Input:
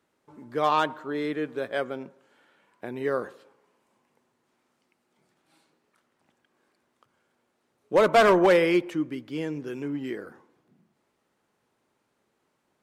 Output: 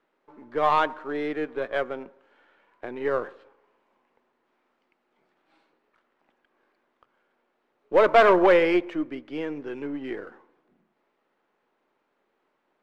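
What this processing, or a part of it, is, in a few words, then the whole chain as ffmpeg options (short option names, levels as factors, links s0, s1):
crystal radio: -af "highpass=300,lowpass=2800,aeval=exprs='if(lt(val(0),0),0.708*val(0),val(0))':c=same,volume=1.5"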